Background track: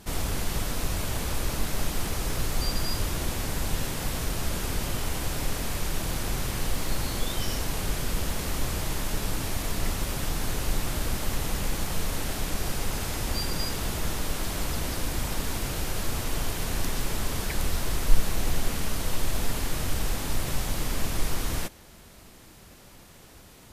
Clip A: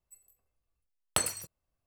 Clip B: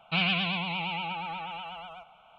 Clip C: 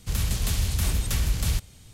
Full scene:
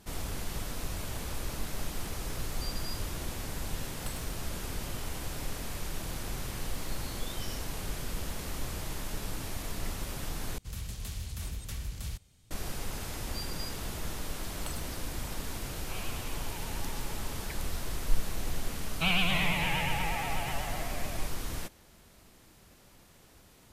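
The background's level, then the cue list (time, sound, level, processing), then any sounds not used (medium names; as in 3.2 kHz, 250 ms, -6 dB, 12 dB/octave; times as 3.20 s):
background track -7.5 dB
2.90 s: add A -17 dB
10.58 s: replace with C -13.5 dB
13.50 s: add A -16 dB
15.77 s: add B -12 dB + rippled Chebyshev high-pass 260 Hz, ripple 9 dB
18.89 s: add B -1.5 dB + ever faster or slower copies 263 ms, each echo -3 st, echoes 2, each echo -6 dB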